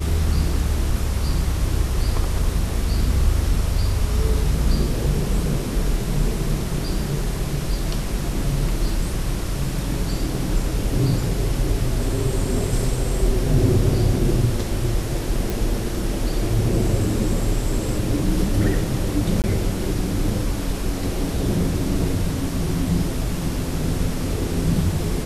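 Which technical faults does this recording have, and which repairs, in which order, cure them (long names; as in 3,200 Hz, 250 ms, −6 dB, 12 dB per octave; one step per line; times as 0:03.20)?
0:15.50: click
0:19.42–0:19.44: drop-out 18 ms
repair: click removal
repair the gap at 0:19.42, 18 ms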